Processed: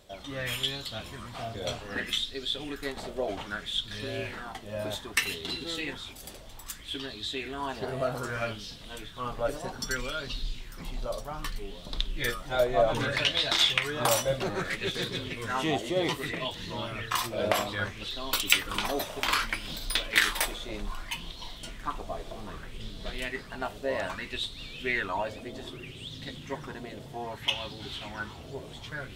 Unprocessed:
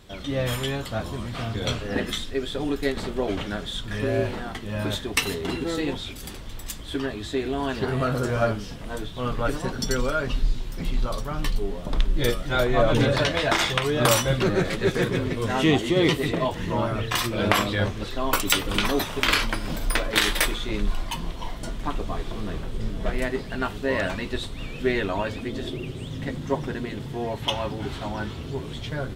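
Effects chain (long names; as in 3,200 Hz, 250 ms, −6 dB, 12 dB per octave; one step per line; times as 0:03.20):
high-shelf EQ 2,700 Hz +8.5 dB
reversed playback
upward compression, threshold −33 dBFS
reversed playback
auto-filter bell 0.63 Hz 590–4,100 Hz +13 dB
level −12 dB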